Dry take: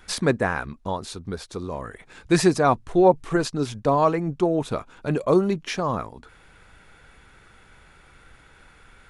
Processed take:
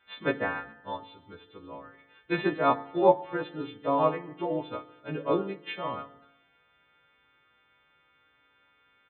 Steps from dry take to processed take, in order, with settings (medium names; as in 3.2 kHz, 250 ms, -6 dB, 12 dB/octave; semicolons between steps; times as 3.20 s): partials quantised in pitch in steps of 2 st; high-pass 110 Hz 12 dB/octave; peaking EQ 170 Hz -3.5 dB 1.7 oct; FDN reverb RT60 1.2 s, low-frequency decay 0.9×, high-frequency decay 0.95×, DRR 7 dB; resampled via 8 kHz; upward expansion 1.5:1, over -36 dBFS; trim -3 dB